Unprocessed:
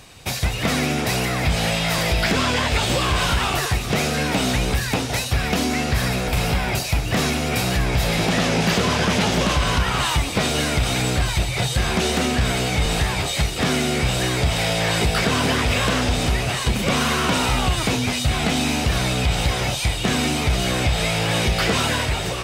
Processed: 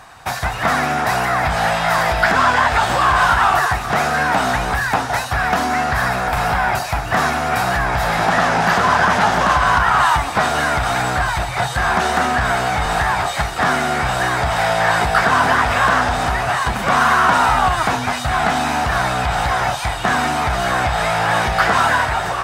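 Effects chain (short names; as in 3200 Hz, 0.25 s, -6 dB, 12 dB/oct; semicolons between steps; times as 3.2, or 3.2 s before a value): band shelf 1100 Hz +14.5 dB; gain -3 dB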